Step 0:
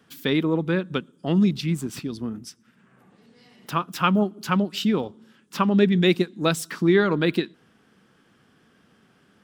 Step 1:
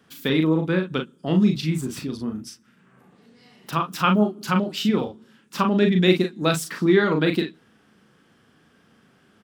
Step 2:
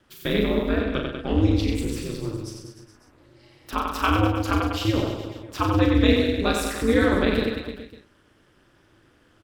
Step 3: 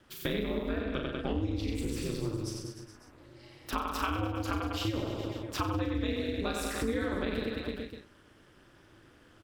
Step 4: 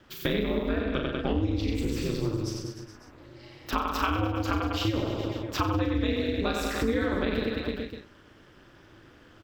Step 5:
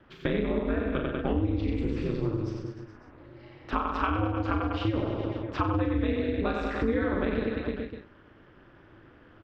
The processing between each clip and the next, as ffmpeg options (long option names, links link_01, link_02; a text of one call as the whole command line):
ffmpeg -i in.wav -af "aecho=1:1:38|51:0.562|0.2" out.wav
ffmpeg -i in.wav -af "aecho=1:1:90|189|297.9|417.7|549.5:0.631|0.398|0.251|0.158|0.1,aeval=exprs='val(0)*sin(2*PI*110*n/s)':channel_layout=same" out.wav
ffmpeg -i in.wav -af "acompressor=threshold=-29dB:ratio=6" out.wav
ffmpeg -i in.wav -af "equalizer=frequency=9700:width_type=o:width=0.47:gain=-13.5,volume=5dB" out.wav
ffmpeg -i in.wav -af "lowpass=2200" out.wav